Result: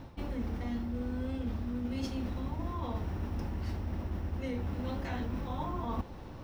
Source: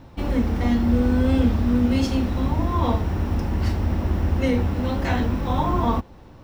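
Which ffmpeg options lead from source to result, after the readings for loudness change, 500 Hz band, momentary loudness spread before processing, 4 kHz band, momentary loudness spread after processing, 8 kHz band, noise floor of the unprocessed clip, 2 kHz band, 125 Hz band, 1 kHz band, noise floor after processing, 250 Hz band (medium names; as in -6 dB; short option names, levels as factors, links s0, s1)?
-14.5 dB, -14.5 dB, 5 LU, -14.0 dB, 2 LU, -14.0 dB, -45 dBFS, -14.5 dB, -14.0 dB, -14.5 dB, -46 dBFS, -15.0 dB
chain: -af "equalizer=f=7400:w=7.7:g=-4,areverse,acompressor=threshold=0.0251:ratio=12,areverse"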